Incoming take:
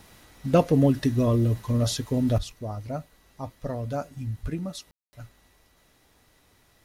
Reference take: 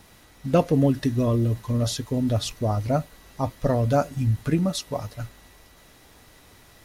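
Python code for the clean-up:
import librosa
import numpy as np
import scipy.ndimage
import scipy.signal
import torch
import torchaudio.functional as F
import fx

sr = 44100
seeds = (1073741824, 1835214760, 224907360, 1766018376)

y = fx.highpass(x, sr, hz=140.0, slope=24, at=(2.36, 2.48), fade=0.02)
y = fx.highpass(y, sr, hz=140.0, slope=24, at=(4.42, 4.54), fade=0.02)
y = fx.fix_ambience(y, sr, seeds[0], print_start_s=5.67, print_end_s=6.17, start_s=4.91, end_s=5.13)
y = fx.fix_level(y, sr, at_s=2.38, step_db=9.5)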